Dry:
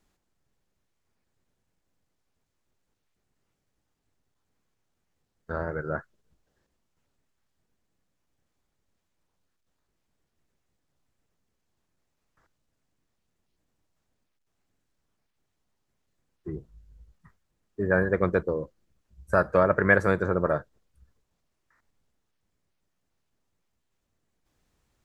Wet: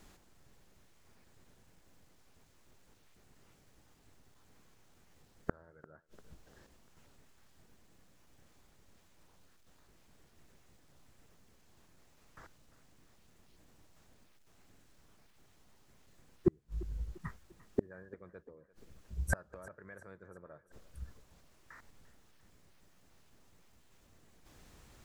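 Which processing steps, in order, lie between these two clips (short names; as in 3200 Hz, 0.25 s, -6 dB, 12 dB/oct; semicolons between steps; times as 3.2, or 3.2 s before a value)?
limiter -11 dBFS, peak gain reduction 5.5 dB; flipped gate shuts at -28 dBFS, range -42 dB; on a send: thinning echo 0.346 s, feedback 52%, high-pass 170 Hz, level -19 dB; on the sum: gain +13.5 dB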